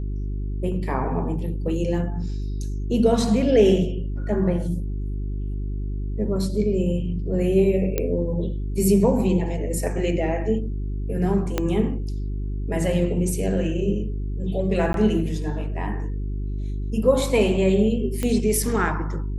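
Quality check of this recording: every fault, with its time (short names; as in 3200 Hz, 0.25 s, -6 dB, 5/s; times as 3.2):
hum 50 Hz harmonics 8 -27 dBFS
7.98 pop -9 dBFS
11.58 pop -8 dBFS
14.93–14.94 gap 12 ms
18.23 pop -12 dBFS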